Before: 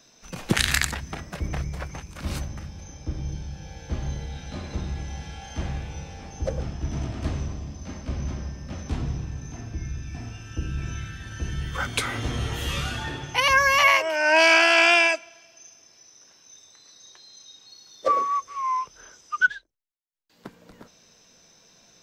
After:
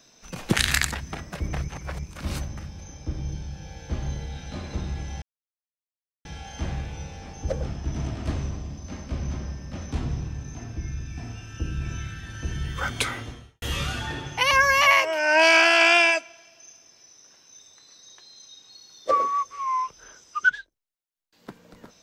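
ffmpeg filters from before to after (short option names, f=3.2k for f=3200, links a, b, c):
-filter_complex "[0:a]asplit=5[a][b][c][d][e];[a]atrim=end=1.682[f];[b]atrim=start=1.678:end=2.042,asetpts=PTS-STARTPTS,areverse[g];[c]atrim=start=2.038:end=5.22,asetpts=PTS-STARTPTS,afade=t=out:st=3.178:d=0.004:c=hsin,apad=pad_dur=1.03[h];[d]atrim=start=5.22:end=12.59,asetpts=PTS-STARTPTS,afade=t=in:d=0.004:c=hsin,afade=t=out:st=6.8:d=0.57:c=qua[i];[e]atrim=start=12.59,asetpts=PTS-STARTPTS,afade=t=in:d=0.004:c=hsin[j];[f][g]acrossfade=d=0.004:c1=hsin:c2=hsin[k];[h][i][j]concat=n=3:v=0:a=1[l];[k][l]acrossfade=d=0.004:c1=hsin:c2=hsin"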